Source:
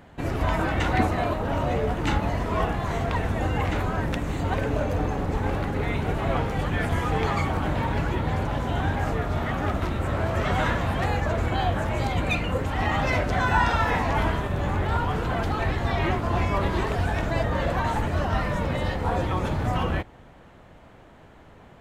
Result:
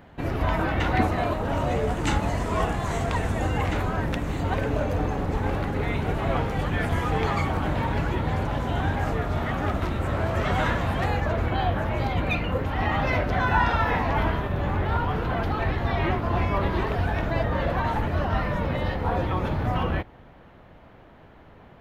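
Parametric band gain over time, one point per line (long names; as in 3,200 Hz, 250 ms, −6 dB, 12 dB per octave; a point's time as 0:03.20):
parametric band 7,900 Hz 0.87 octaves
0:00.82 −8.5 dB
0:01.22 −1.5 dB
0:02.05 +8.5 dB
0:03.22 +8.5 dB
0:03.98 −2.5 dB
0:10.99 −2.5 dB
0:11.50 −14.5 dB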